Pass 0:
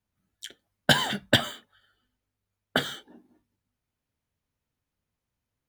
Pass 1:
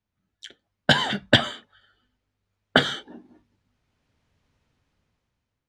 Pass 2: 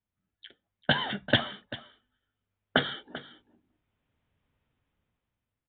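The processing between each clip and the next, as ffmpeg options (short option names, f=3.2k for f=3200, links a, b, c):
-af "lowpass=5.3k,dynaudnorm=f=410:g=5:m=15dB"
-af "aecho=1:1:391:0.158,aresample=8000,aresample=44100,volume=-6.5dB"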